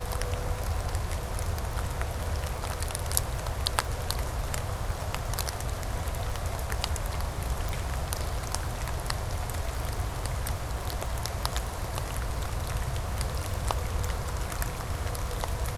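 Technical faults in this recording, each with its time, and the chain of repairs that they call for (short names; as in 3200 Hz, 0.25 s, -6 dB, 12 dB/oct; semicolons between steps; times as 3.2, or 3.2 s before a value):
crackle 43/s -35 dBFS
7.69 pop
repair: de-click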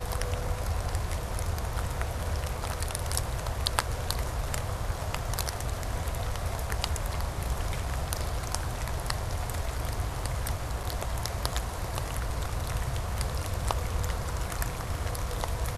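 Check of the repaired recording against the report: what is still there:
none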